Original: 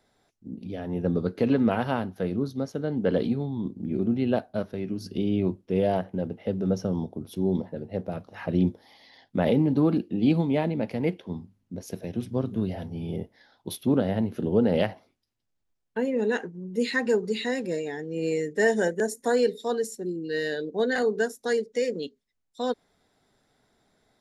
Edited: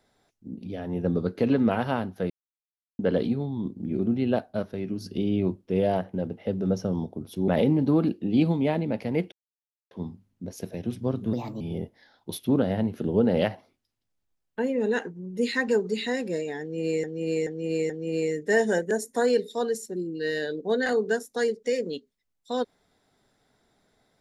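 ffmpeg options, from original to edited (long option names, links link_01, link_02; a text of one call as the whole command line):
ffmpeg -i in.wav -filter_complex "[0:a]asplit=10[link_01][link_02][link_03][link_04][link_05][link_06][link_07][link_08][link_09][link_10];[link_01]atrim=end=2.3,asetpts=PTS-STARTPTS,afade=type=out:start_time=2.296:duration=0.004:curve=hsin[link_11];[link_02]atrim=start=2.3:end=2.99,asetpts=PTS-STARTPTS,volume=0[link_12];[link_03]atrim=start=2.99:end=7.482,asetpts=PTS-STARTPTS,afade=type=in:duration=0.004:curve=hsin[link_13];[link_04]atrim=start=9.368:end=11.21,asetpts=PTS-STARTPTS,afade=type=out:start_time=1.838:duration=0.004:curve=hsin,apad=pad_dur=0.59[link_14];[link_05]atrim=start=11.21:end=12.634,asetpts=PTS-STARTPTS,afade=type=in:duration=0.004:curve=hsin[link_15];[link_06]atrim=start=12.63:end=12.99,asetpts=PTS-STARTPTS,asetrate=57330,aresample=44100,atrim=end_sample=12212,asetpts=PTS-STARTPTS[link_16];[link_07]atrim=start=12.986:end=18.422[link_17];[link_08]atrim=start=17.988:end=18.422[link_18];[link_09]atrim=start=17.988:end=18.422[link_19];[link_10]atrim=start=17.988[link_20];[link_11][link_12][link_13]concat=n=3:v=0:a=1[link_21];[link_14][link_15]concat=n=2:v=0:a=1[link_22];[link_21][link_22]acrossfade=duration=0.004:curve1=hsin:curve2=hsin[link_23];[link_23][link_16]acrossfade=duration=0.004:curve1=hsin:curve2=hsin[link_24];[link_24][link_17]acrossfade=duration=0.004:curve1=hsin:curve2=hsin[link_25];[link_25][link_18]acrossfade=duration=0.004:curve1=hsin:curve2=hsin[link_26];[link_26][link_19]acrossfade=duration=0.004:curve1=hsin:curve2=hsin[link_27];[link_27][link_20]acrossfade=duration=0.004:curve1=hsin:curve2=hsin" out.wav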